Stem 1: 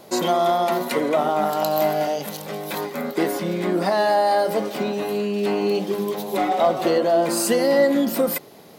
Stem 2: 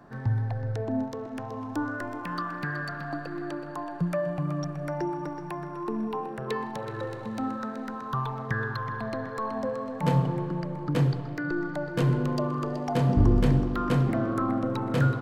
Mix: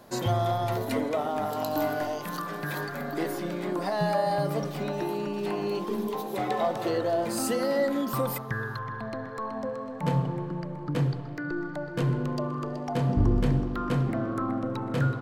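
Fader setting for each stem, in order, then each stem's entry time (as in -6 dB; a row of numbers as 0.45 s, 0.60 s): -9.0 dB, -2.5 dB; 0.00 s, 0.00 s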